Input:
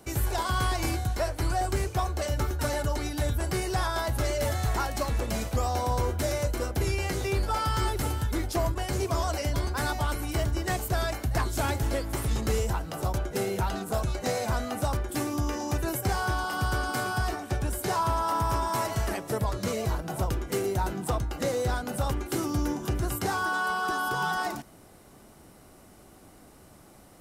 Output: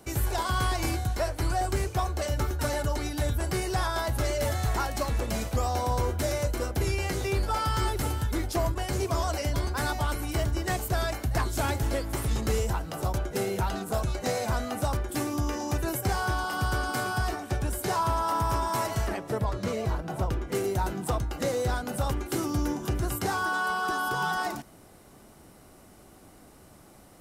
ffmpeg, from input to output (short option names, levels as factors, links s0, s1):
-filter_complex "[0:a]asettb=1/sr,asplit=3[s0][s1][s2];[s0]atrim=end=19.074[s3];[s1]atrim=start=19.07:end=20.55,asetpts=PTS-STARTPTS,afade=t=in:d=0.004:c=qsin,afade=t=out:st=1.476:d=0.004:c=qsin,highshelf=f=5300:g=-10.5[s4];[s2]atrim=start=20.546[s5];[s3][s4]acrossfade=d=0.004:c1=hsin:c2=qsin[s6];[s6][s5]acrossfade=d=0.004:c1=qsin:c2=hsin"